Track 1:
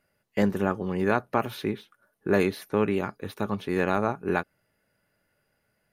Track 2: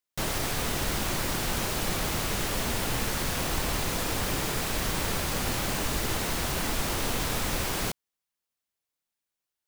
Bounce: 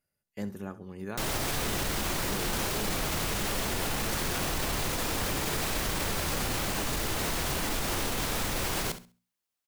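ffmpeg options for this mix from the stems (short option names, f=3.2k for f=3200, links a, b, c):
-filter_complex "[0:a]bass=f=250:g=7,treble=f=4k:g=11,volume=-16dB,asplit=2[a][b];[b]volume=-16dB[c];[1:a]adelay=1000,volume=0.5dB,asplit=2[d][e];[e]volume=-14dB[f];[c][f]amix=inputs=2:normalize=0,aecho=0:1:67|134|201|268:1|0.22|0.0484|0.0106[g];[a][d][g]amix=inputs=3:normalize=0,bandreject=f=60:t=h:w=6,bandreject=f=120:t=h:w=6,bandreject=f=180:t=h:w=6,bandreject=f=240:t=h:w=6,alimiter=limit=-21dB:level=0:latency=1:release=19"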